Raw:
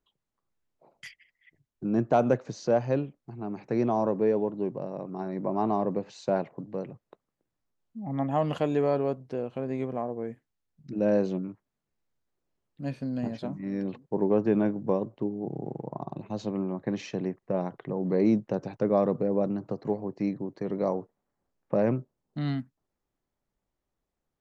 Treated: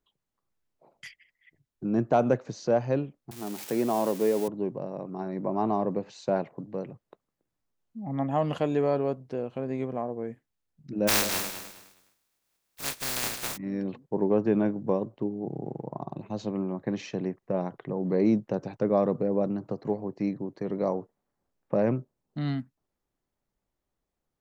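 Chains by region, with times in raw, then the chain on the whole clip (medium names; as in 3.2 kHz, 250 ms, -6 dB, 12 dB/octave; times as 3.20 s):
3.31–4.48 s: zero-crossing glitches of -27 dBFS + high-pass 180 Hz
11.07–13.56 s: spectral contrast reduction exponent 0.12 + band-stop 3 kHz, Q 25 + feedback delay 207 ms, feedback 27%, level -10 dB
whole clip: none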